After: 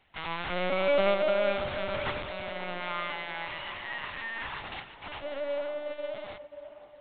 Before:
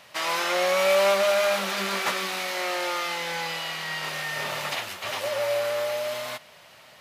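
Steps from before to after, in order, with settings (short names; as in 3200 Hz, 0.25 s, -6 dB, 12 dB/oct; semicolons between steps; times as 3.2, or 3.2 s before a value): 2.79–4.61 ten-band EQ 500 Hz -10 dB, 1000 Hz +5 dB, 2000 Hz +3 dB; LPC vocoder at 8 kHz pitch kept; band-limited delay 0.536 s, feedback 60%, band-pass 530 Hz, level -7 dB; upward expander 1.5:1, over -42 dBFS; gain -3.5 dB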